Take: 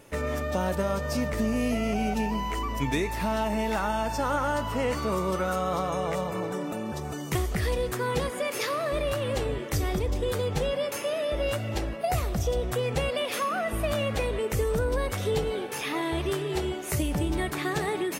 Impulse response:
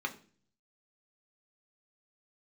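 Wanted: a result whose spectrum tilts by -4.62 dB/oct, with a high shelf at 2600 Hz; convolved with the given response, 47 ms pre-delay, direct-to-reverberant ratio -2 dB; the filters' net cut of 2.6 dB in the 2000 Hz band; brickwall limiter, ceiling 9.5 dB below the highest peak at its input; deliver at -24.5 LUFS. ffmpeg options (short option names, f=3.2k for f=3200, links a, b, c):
-filter_complex "[0:a]equalizer=f=2k:t=o:g=-6,highshelf=f=2.6k:g=5.5,alimiter=limit=-23dB:level=0:latency=1,asplit=2[a][b];[1:a]atrim=start_sample=2205,adelay=47[c];[b][c]afir=irnorm=-1:irlink=0,volume=-2.5dB[d];[a][d]amix=inputs=2:normalize=0,volume=5dB"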